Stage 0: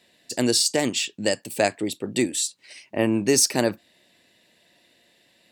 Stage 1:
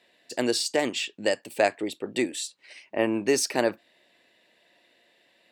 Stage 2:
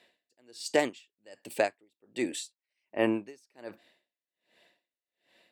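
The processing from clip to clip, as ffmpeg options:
-af "bass=f=250:g=-12,treble=f=4k:g=-10"
-af "aeval=exprs='val(0)*pow(10,-39*(0.5-0.5*cos(2*PI*1.3*n/s))/20)':c=same"

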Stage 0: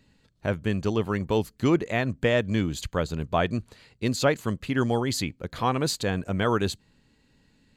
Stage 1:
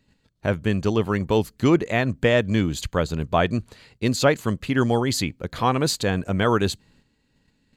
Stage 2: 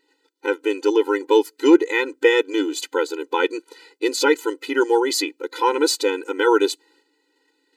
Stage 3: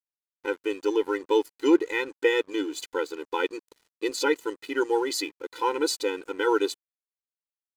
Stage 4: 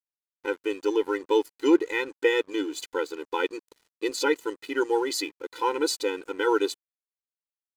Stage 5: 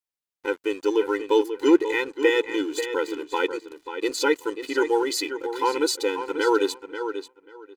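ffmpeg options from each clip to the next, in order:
-af "agate=range=-8dB:threshold=-60dB:ratio=16:detection=peak,volume=4dB"
-af "afftfilt=real='re*eq(mod(floor(b*sr/1024/260),2),1)':imag='im*eq(mod(floor(b*sr/1024/260),2),1)':win_size=1024:overlap=0.75,volume=6.5dB"
-af "aeval=exprs='sgn(val(0))*max(abs(val(0))-0.00794,0)':c=same,volume=-6.5dB"
-af anull
-filter_complex "[0:a]asplit=2[a][b];[b]adelay=538,lowpass=f=4.2k:p=1,volume=-9dB,asplit=2[c][d];[d]adelay=538,lowpass=f=4.2k:p=1,volume=0.18,asplit=2[e][f];[f]adelay=538,lowpass=f=4.2k:p=1,volume=0.18[g];[a][c][e][g]amix=inputs=4:normalize=0,volume=2.5dB"

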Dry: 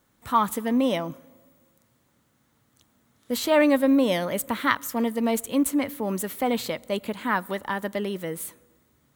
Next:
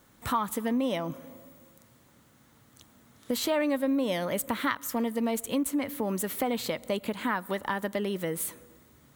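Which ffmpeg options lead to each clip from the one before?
-af "acompressor=threshold=-36dB:ratio=3,volume=6.5dB"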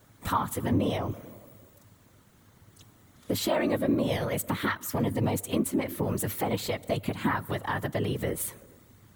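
-af "afftfilt=real='hypot(re,im)*cos(2*PI*random(0))':imag='hypot(re,im)*sin(2*PI*random(1))':win_size=512:overlap=0.75,equalizer=f=100:t=o:w=0.47:g=13,volume=6dB"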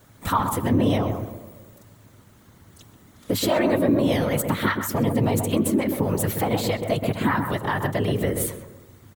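-filter_complex "[0:a]asplit=2[a][b];[b]adelay=129,lowpass=f=920:p=1,volume=-3.5dB,asplit=2[c][d];[d]adelay=129,lowpass=f=920:p=1,volume=0.38,asplit=2[e][f];[f]adelay=129,lowpass=f=920:p=1,volume=0.38,asplit=2[g][h];[h]adelay=129,lowpass=f=920:p=1,volume=0.38,asplit=2[i][j];[j]adelay=129,lowpass=f=920:p=1,volume=0.38[k];[a][c][e][g][i][k]amix=inputs=6:normalize=0,volume=5dB"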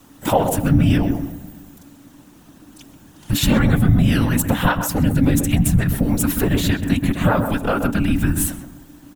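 -af "afreqshift=-390,volume=5.5dB"

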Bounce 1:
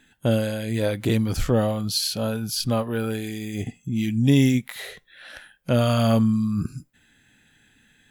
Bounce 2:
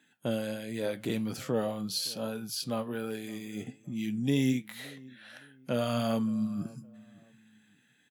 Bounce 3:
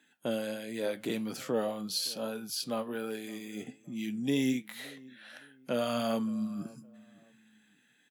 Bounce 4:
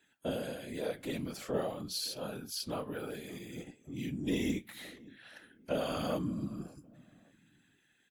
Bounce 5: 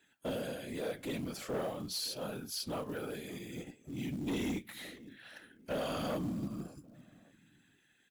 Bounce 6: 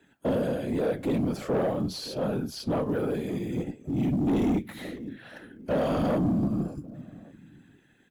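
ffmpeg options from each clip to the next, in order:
-filter_complex "[0:a]highpass=f=140:w=0.5412,highpass=f=140:w=1.3066,flanger=delay=6.3:depth=4.3:regen=75:speed=1.3:shape=triangular,asplit=2[a][b];[b]adelay=566,lowpass=f=1.5k:p=1,volume=-22dB,asplit=2[c][d];[d]adelay=566,lowpass=f=1.5k:p=1,volume=0.33[e];[a][c][e]amix=inputs=3:normalize=0,volume=-4dB"
-af "highpass=210"
-af "afftfilt=real='hypot(re,im)*cos(2*PI*random(0))':imag='hypot(re,im)*sin(2*PI*random(1))':win_size=512:overlap=0.75,volume=2.5dB"
-af "asoftclip=type=tanh:threshold=-31dB,acrusher=bits=6:mode=log:mix=0:aa=0.000001,volume=1dB"
-filter_complex "[0:a]tiltshelf=f=1.3k:g=8,acrossover=split=170|7500[a][b][c];[c]alimiter=level_in=26.5dB:limit=-24dB:level=0:latency=1:release=456,volume=-26.5dB[d];[a][b][d]amix=inputs=3:normalize=0,asoftclip=type=tanh:threshold=-27.5dB,volume=7.5dB"

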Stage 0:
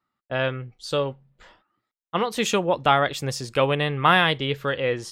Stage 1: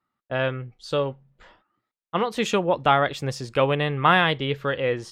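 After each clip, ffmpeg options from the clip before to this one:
-af "aemphasis=mode=reproduction:type=cd"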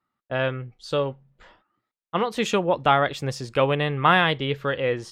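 -af anull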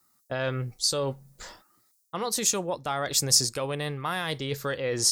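-af "areverse,acompressor=threshold=-27dB:ratio=12,areverse,alimiter=level_in=1.5dB:limit=-24dB:level=0:latency=1:release=226,volume=-1.5dB,aexciter=amount=11.1:drive=4.4:freq=4.5k,volume=5.5dB"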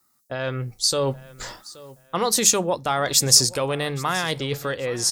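-af "bandreject=f=50:t=h:w=6,bandreject=f=100:t=h:w=6,bandreject=f=150:t=h:w=6,bandreject=f=200:t=h:w=6,dynaudnorm=f=400:g=5:m=8dB,aecho=1:1:825|1650:0.1|0.028,volume=1dB"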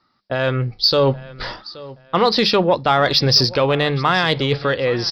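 -filter_complex "[0:a]aresample=11025,aresample=44100,asplit=2[a][b];[b]asoftclip=type=tanh:threshold=-21.5dB,volume=-10.5dB[c];[a][c]amix=inputs=2:normalize=0,volume=6dB"

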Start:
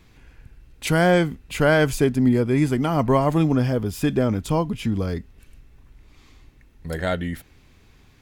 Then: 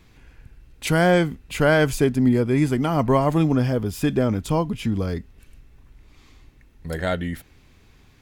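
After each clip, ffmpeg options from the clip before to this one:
-af anull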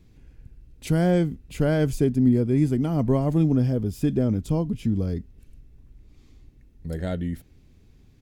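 -af "firequalizer=gain_entry='entry(210,0);entry(1000,-14);entry(5200,-8)':delay=0.05:min_phase=1"

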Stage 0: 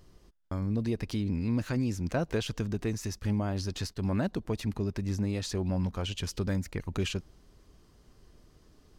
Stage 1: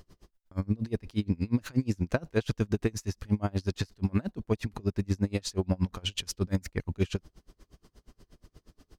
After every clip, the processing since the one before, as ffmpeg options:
-af "aeval=exprs='val(0)*pow(10,-31*(0.5-0.5*cos(2*PI*8.4*n/s))/20)':c=same,volume=7dB"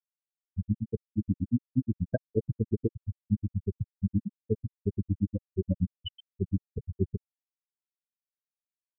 -af "afftfilt=real='re*gte(hypot(re,im),0.224)':imag='im*gte(hypot(re,im),0.224)':win_size=1024:overlap=0.75"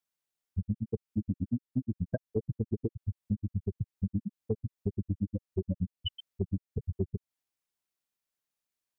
-af "acompressor=threshold=-36dB:ratio=4,volume=6.5dB"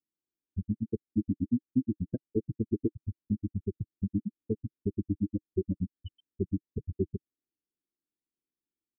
-af "firequalizer=gain_entry='entry(150,0);entry(310,12);entry(660,-18)':delay=0.05:min_phase=1,volume=-2dB"

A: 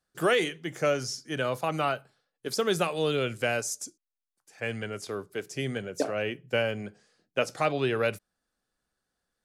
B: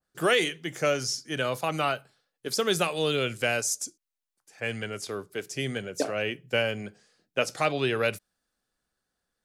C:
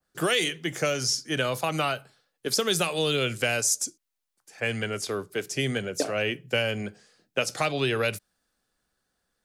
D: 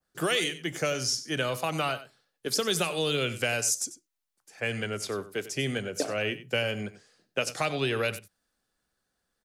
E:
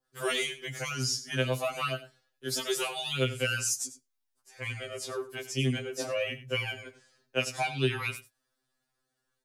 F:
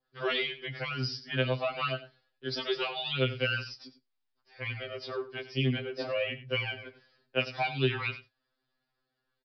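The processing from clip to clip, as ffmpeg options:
-af "adynamicequalizer=threshold=0.00891:dfrequency=1900:dqfactor=0.7:tfrequency=1900:tqfactor=0.7:attack=5:release=100:ratio=0.375:range=2.5:mode=boostabove:tftype=highshelf"
-filter_complex "[0:a]acrossover=split=130|3000[a][b][c];[b]acompressor=threshold=-28dB:ratio=6[d];[a][d][c]amix=inputs=3:normalize=0,volume=4.5dB"
-af "aecho=1:1:94:0.178,volume=-2.5dB"
-af "afftfilt=real='re*2.45*eq(mod(b,6),0)':imag='im*2.45*eq(mod(b,6),0)':win_size=2048:overlap=0.75"
-af "aresample=11025,aresample=44100"

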